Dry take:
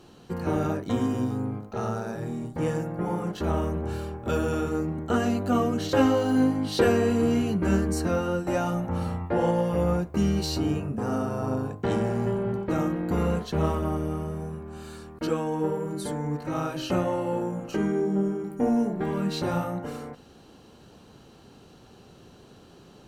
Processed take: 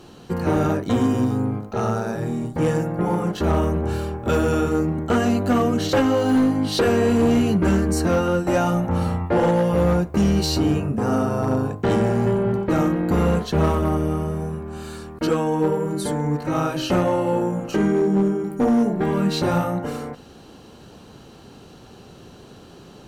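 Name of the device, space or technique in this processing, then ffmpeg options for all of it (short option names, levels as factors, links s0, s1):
limiter into clipper: -af "alimiter=limit=0.2:level=0:latency=1:release=372,asoftclip=type=hard:threshold=0.1,volume=2.24"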